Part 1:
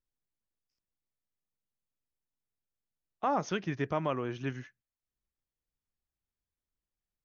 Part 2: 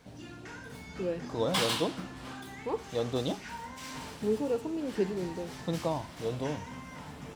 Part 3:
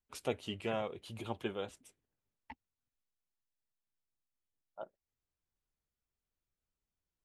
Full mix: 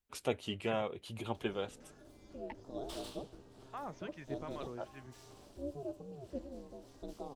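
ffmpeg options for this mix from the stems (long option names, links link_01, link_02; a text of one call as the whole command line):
ffmpeg -i stem1.wav -i stem2.wav -i stem3.wav -filter_complex "[0:a]acrossover=split=960[link_01][link_02];[link_01]aeval=exprs='val(0)*(1-0.7/2+0.7/2*cos(2*PI*2.6*n/s))':channel_layout=same[link_03];[link_02]aeval=exprs='val(0)*(1-0.7/2-0.7/2*cos(2*PI*2.6*n/s))':channel_layout=same[link_04];[link_03][link_04]amix=inputs=2:normalize=0,adelay=500,volume=-10dB[link_05];[1:a]equalizer=frequency=125:width_type=o:width=1:gain=3,equalizer=frequency=500:width_type=o:width=1:gain=6,equalizer=frequency=1000:width_type=o:width=1:gain=-4,equalizer=frequency=2000:width_type=o:width=1:gain=-10,acompressor=mode=upward:threshold=-35dB:ratio=2.5,aeval=exprs='val(0)*sin(2*PI*140*n/s)':channel_layout=same,adelay=1350,volume=-13.5dB[link_06];[2:a]volume=1.5dB,asplit=2[link_07][link_08];[link_08]apad=whole_len=341664[link_09];[link_05][link_09]sidechaincompress=threshold=-44dB:ratio=8:attack=35:release=600[link_10];[link_10][link_06][link_07]amix=inputs=3:normalize=0" out.wav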